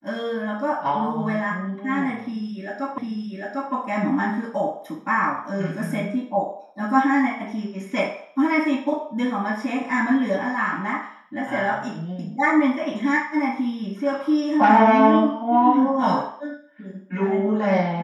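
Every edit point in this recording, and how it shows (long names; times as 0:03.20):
0:02.98: the same again, the last 0.75 s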